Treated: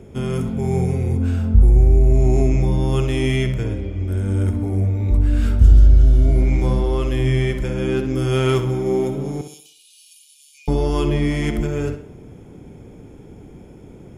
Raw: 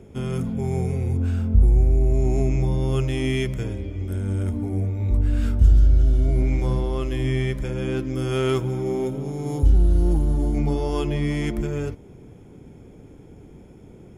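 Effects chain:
0:03.36–0:04.17: high-shelf EQ 4,800 Hz −5.5 dB
0:09.41–0:10.68: Chebyshev high-pass filter 2,400 Hz, order 8
on a send: tape delay 65 ms, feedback 45%, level −8.5 dB, low-pass 5,800 Hz
on the sum: level +4 dB

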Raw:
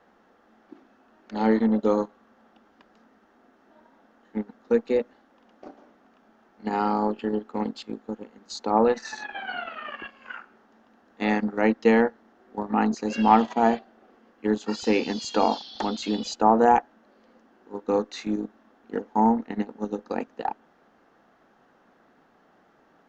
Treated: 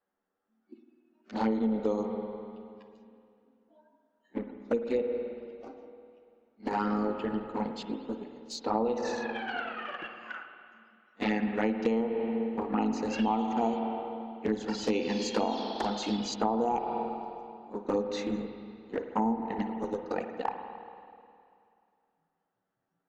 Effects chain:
noise reduction from a noise print of the clip's start 22 dB
flanger swept by the level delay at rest 10.5 ms, full sweep at −18 dBFS
spring reverb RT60 2.4 s, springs 49/53 ms, chirp 65 ms, DRR 6.5 dB
downward compressor 12 to 1, threshold −24 dBFS, peak gain reduction 11.5 dB

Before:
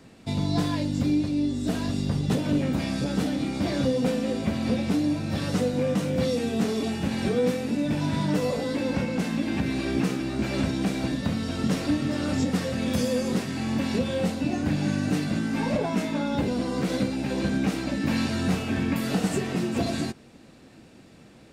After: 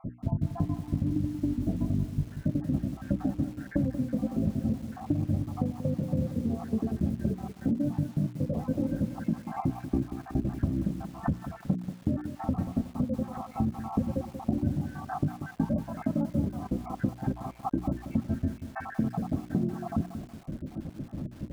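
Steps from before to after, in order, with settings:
time-frequency cells dropped at random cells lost 70%
low-pass filter 1,500 Hz 24 dB per octave
notch filter 410 Hz, Q 12
gate on every frequency bin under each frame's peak −25 dB strong
spectral tilt −4 dB per octave
mains-hum notches 60/120/180/240/300/360 Hz
downward compressor 10 to 1, threshold −33 dBFS, peak gain reduction 21.5 dB
notch comb filter 480 Hz
feedback echo at a low word length 185 ms, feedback 55%, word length 9 bits, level −10 dB
level +8 dB

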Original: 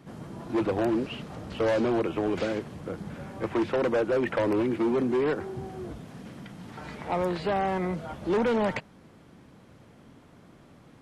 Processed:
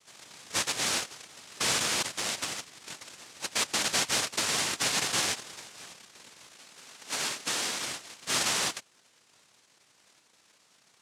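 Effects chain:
harmonic generator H 3 −14 dB, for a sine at −19 dBFS
cochlear-implant simulation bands 1
0:06.52–0:07.87: high-pass filter 150 Hz 12 dB per octave
level −2 dB

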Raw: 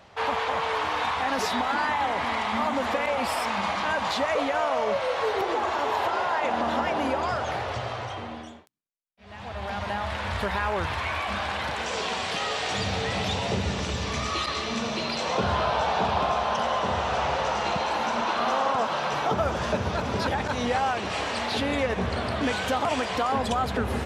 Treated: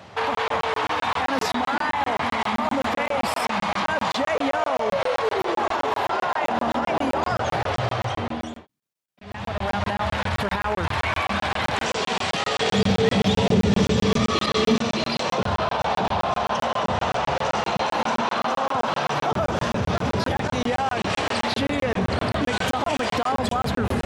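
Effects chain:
high-pass filter 87 Hz 24 dB per octave
low-shelf EQ 260 Hz +5.5 dB
brickwall limiter −22 dBFS, peak gain reduction 9.5 dB
0:12.60–0:14.76: hollow resonant body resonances 210/430/3,300 Hz, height 10 dB, ringing for 40 ms
hard clipping −18.5 dBFS, distortion −33 dB
regular buffer underruns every 0.13 s, samples 1,024, zero, from 0:00.35
level +7 dB

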